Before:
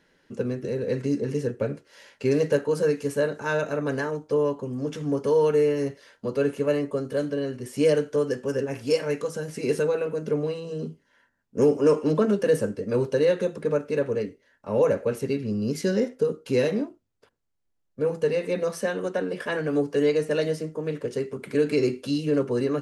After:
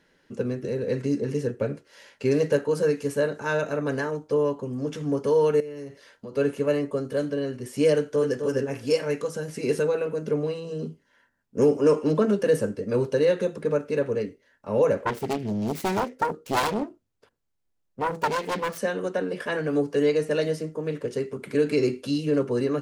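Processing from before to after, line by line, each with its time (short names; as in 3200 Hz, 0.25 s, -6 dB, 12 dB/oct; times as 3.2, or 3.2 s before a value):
5.6–6.37 compressor 4:1, threshold -36 dBFS
7.95–8.44 echo throw 0.26 s, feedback 15%, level -6.5 dB
15–18.78 self-modulated delay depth 0.99 ms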